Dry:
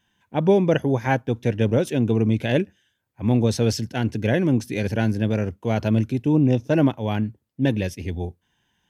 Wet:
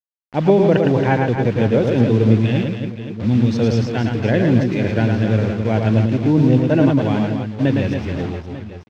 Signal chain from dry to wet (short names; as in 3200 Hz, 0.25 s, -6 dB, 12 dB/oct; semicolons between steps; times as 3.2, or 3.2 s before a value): 2.36–3.54 band shelf 800 Hz -10 dB 2.6 oct; requantised 6-bit, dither none; air absorption 190 m; reverse bouncing-ball echo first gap 0.11 s, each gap 1.5×, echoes 5; gain +3.5 dB